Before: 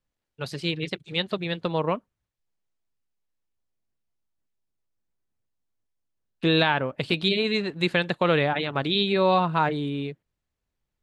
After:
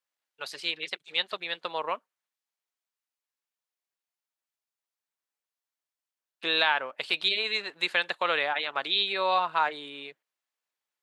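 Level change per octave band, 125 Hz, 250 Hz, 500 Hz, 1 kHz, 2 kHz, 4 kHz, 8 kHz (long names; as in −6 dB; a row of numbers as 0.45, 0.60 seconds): −28.0 dB, −19.0 dB, −9.0 dB, −2.0 dB, 0.0 dB, 0.0 dB, can't be measured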